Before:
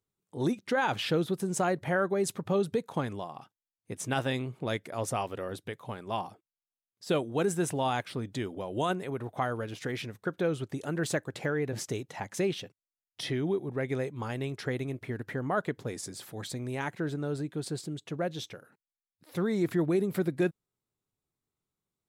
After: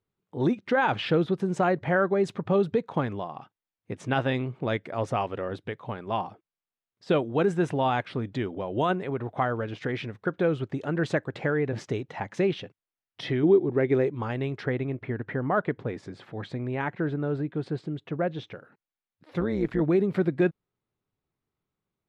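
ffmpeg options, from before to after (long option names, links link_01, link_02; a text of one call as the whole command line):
ffmpeg -i in.wav -filter_complex "[0:a]asettb=1/sr,asplit=3[link_01][link_02][link_03];[link_01]atrim=end=13.434[link_04];[link_02]atrim=start=13.43:end=14.15,asetpts=PTS-STARTPTS,afade=type=in:duration=0.004:curve=qsin,afade=type=out:start_time=0.716:duration=0.004:curve=qsin,equalizer=frequency=350:width_type=o:width=0.64:gain=9[link_05];[link_03]atrim=start=14.146[link_06];[link_04][link_05]acrossfade=duration=0.004:curve1=hsin:curve2=qsin[link_07];[link_07][link_06]acrossfade=duration=0.004:curve1=qsin:curve2=hsin,asettb=1/sr,asplit=3[link_08][link_09][link_10];[link_08]atrim=end=14.654[link_11];[link_09]atrim=start=14.65:end=18.52,asetpts=PTS-STARTPTS,afade=type=in:duration=0.004:curve=qsin,afade=type=out:start_time=3.866:duration=0.004:curve=qsin,bass=frequency=250:gain=0,treble=frequency=4000:gain=-10[link_12];[link_10]atrim=start=18.516[link_13];[link_11][link_12]acrossfade=duration=0.004:curve1=hsin:curve2=qsin[link_14];[link_14][link_13]acrossfade=duration=0.004:curve1=qsin:curve2=hsin,asplit=3[link_15][link_16][link_17];[link_15]afade=type=out:start_time=19.39:duration=0.02[link_18];[link_16]tremolo=f=120:d=0.75,afade=type=in:start_time=19.39:duration=0.02,afade=type=out:start_time=19.8:duration=0.02[link_19];[link_17]afade=type=in:start_time=19.8:duration=0.02[link_20];[link_18][link_19][link_20]amix=inputs=3:normalize=0,lowpass=2900,volume=4.5dB" out.wav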